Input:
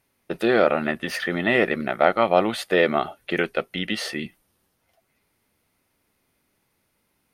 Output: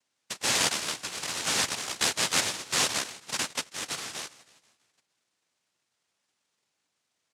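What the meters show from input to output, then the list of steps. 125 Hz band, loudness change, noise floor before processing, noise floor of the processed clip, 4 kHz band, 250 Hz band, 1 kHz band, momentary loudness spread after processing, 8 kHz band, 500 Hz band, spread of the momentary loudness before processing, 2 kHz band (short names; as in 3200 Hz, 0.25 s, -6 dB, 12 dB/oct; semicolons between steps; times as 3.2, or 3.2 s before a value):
-10.5 dB, -5.0 dB, -72 dBFS, -81 dBFS, +4.0 dB, -16.5 dB, -10.0 dB, 10 LU, +16.0 dB, -19.0 dB, 8 LU, -7.0 dB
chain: frequency-shifting echo 0.162 s, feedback 56%, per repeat -37 Hz, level -20 dB; noise vocoder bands 1; gain -8 dB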